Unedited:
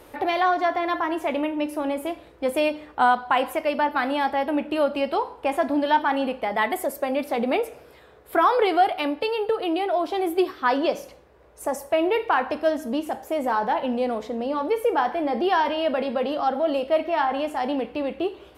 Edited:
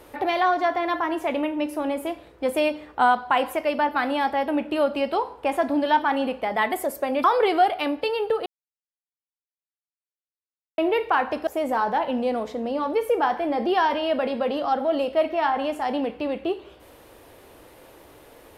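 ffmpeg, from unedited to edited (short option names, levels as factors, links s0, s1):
-filter_complex "[0:a]asplit=5[s0][s1][s2][s3][s4];[s0]atrim=end=7.242[s5];[s1]atrim=start=8.428:end=9.65,asetpts=PTS-STARTPTS,afade=t=out:st=1.218:d=0.004:c=hsin[s6];[s2]atrim=start=9.65:end=11.97,asetpts=PTS-STARTPTS,volume=0[s7];[s3]atrim=start=11.97:end=12.662,asetpts=PTS-STARTPTS,afade=t=in:d=0.004:c=hsin[s8];[s4]atrim=start=13.218[s9];[s6][s7][s8]concat=n=3:v=0:a=1[s10];[s5][s10]acrossfade=d=0.004:c1=hsin:c2=hsin[s11];[s11][s9]acrossfade=d=0.004:c1=hsin:c2=hsin"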